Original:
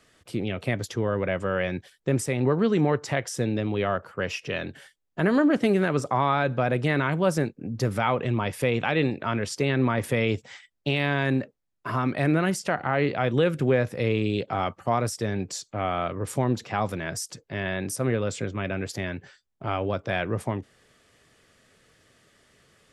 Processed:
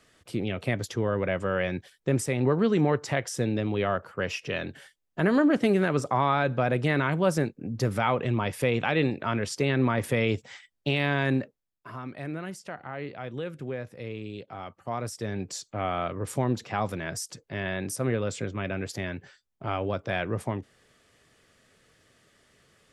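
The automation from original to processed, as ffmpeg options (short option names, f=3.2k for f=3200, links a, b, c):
-af "volume=9.5dB,afade=t=out:st=11.35:d=0.55:silence=0.266073,afade=t=in:st=14.67:d=0.95:silence=0.298538"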